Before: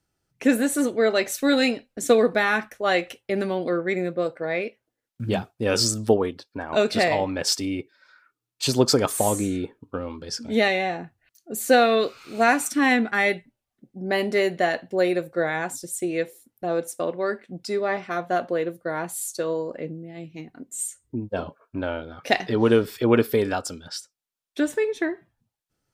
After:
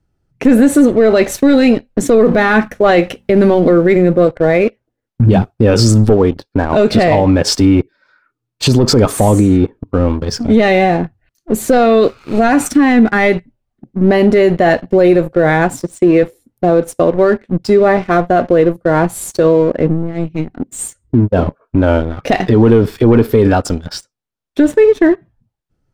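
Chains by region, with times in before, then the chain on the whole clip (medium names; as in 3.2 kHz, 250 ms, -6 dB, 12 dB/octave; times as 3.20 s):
2.19–4.27 s: companding laws mixed up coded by mu + de-hum 47.33 Hz, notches 5
15.83–16.23 s: high-pass 150 Hz + distance through air 69 m
whole clip: waveshaping leveller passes 2; tilt EQ -3 dB/octave; loudness maximiser +8.5 dB; trim -1 dB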